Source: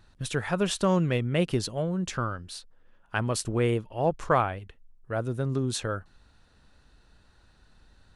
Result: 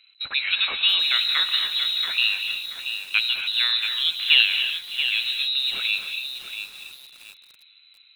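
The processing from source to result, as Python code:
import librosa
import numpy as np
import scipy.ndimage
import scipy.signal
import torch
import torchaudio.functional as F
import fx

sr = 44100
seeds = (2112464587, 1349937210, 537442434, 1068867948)

p1 = fx.wiener(x, sr, points=9)
p2 = fx.band_shelf(p1, sr, hz=1700.0, db=12.5, octaves=1.7)
p3 = 10.0 ** (-5.0 / 20.0) * np.tanh(p2 / 10.0 ** (-5.0 / 20.0))
p4 = fx.quant_dither(p3, sr, seeds[0], bits=6, dither='none')
p5 = p3 + (p4 * librosa.db_to_amplitude(-5.5))
p6 = fx.air_absorb(p5, sr, metres=420.0)
p7 = fx.echo_filtered(p6, sr, ms=610, feedback_pct=43, hz=920.0, wet_db=-15.5)
p8 = fx.freq_invert(p7, sr, carrier_hz=4000)
p9 = fx.rev_gated(p8, sr, seeds[1], gate_ms=300, shape='rising', drr_db=6.0)
p10 = fx.echo_crushed(p9, sr, ms=681, feedback_pct=35, bits=6, wet_db=-8)
y = p10 * librosa.db_to_amplitude(-2.0)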